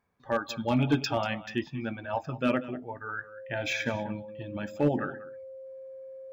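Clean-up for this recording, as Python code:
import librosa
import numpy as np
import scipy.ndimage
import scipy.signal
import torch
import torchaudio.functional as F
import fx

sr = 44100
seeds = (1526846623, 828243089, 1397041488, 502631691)

y = fx.fix_declip(x, sr, threshold_db=-17.0)
y = fx.notch(y, sr, hz=530.0, q=30.0)
y = fx.fix_echo_inverse(y, sr, delay_ms=190, level_db=-16.5)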